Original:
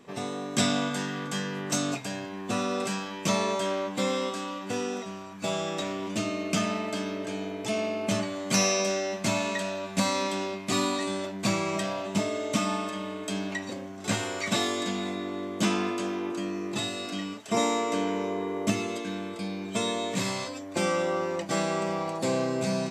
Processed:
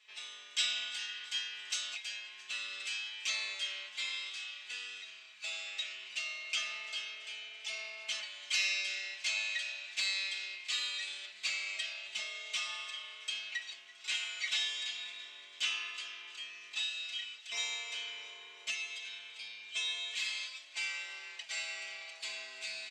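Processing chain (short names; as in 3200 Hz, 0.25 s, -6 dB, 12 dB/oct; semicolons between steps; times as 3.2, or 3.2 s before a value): ladder band-pass 3400 Hz, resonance 40%; comb 4.7 ms, depth 88%; frequency-shifting echo 0.335 s, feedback 60%, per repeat +32 Hz, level -19.5 dB; gain +6 dB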